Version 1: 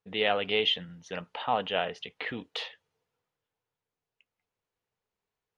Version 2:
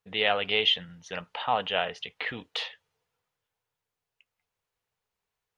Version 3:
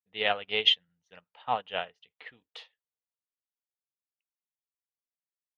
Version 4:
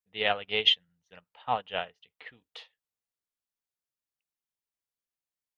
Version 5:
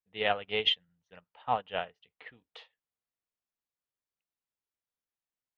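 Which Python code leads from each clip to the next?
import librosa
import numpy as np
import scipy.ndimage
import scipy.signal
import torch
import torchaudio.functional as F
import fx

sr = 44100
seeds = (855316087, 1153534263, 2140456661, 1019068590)

y1 = fx.peak_eq(x, sr, hz=280.0, db=-7.0, octaves=2.0)
y1 = F.gain(torch.from_numpy(y1), 3.5).numpy()
y2 = fx.upward_expand(y1, sr, threshold_db=-41.0, expansion=2.5)
y2 = F.gain(torch.from_numpy(y2), 3.0).numpy()
y3 = fx.low_shelf(y2, sr, hz=140.0, db=6.0)
y4 = fx.high_shelf(y3, sr, hz=3800.0, db=-11.5)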